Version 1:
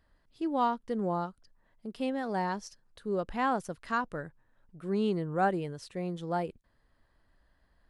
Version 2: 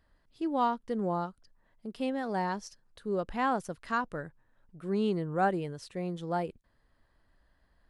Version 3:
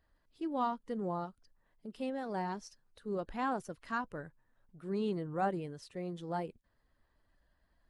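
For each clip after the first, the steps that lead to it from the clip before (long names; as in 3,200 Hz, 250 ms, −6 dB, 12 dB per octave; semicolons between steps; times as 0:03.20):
no processing that can be heard
spectral magnitudes quantised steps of 15 dB; level −5 dB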